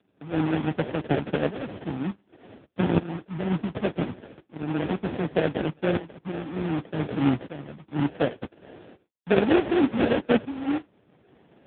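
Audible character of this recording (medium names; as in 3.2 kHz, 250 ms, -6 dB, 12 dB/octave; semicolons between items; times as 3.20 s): phasing stages 12, 0.26 Hz, lowest notch 700–1600 Hz; tremolo saw up 0.67 Hz, depth 85%; aliases and images of a low sample rate 1.1 kHz, jitter 20%; AMR-NB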